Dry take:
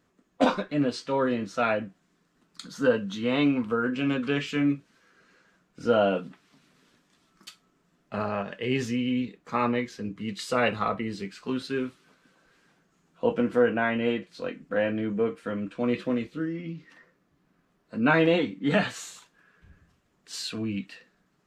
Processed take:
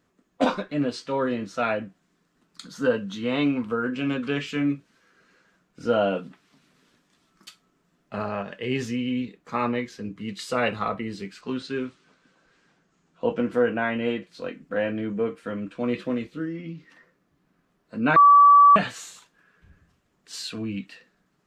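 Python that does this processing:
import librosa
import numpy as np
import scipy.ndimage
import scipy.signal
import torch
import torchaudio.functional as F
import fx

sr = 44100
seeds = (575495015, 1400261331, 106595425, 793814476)

y = fx.lowpass(x, sr, hz=8100.0, slope=24, at=(11.41, 13.51))
y = fx.edit(y, sr, fx.bleep(start_s=18.16, length_s=0.6, hz=1150.0, db=-9.5), tone=tone)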